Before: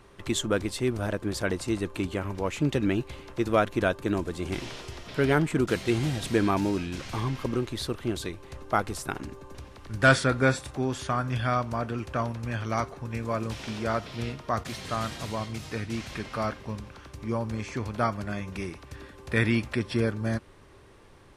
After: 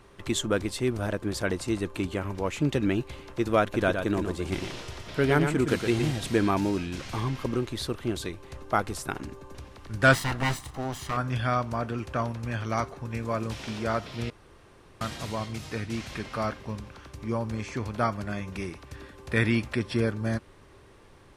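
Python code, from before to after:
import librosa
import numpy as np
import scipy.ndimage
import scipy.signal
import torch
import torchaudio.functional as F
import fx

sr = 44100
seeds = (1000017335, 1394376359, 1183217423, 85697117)

y = fx.echo_single(x, sr, ms=116, db=-6.5, at=(3.62, 6.12))
y = fx.lower_of_two(y, sr, delay_ms=1.0, at=(10.13, 11.17))
y = fx.edit(y, sr, fx.room_tone_fill(start_s=14.3, length_s=0.71), tone=tone)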